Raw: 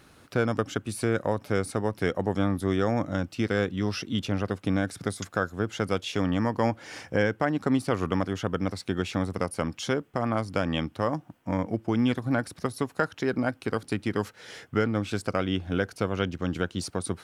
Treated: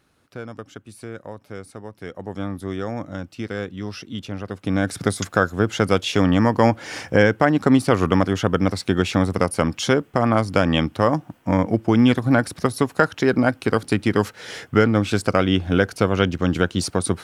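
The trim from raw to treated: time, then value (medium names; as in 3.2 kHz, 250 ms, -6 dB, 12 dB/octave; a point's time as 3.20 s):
2.01 s -9 dB
2.43 s -2.5 dB
4.45 s -2.5 dB
4.94 s +9 dB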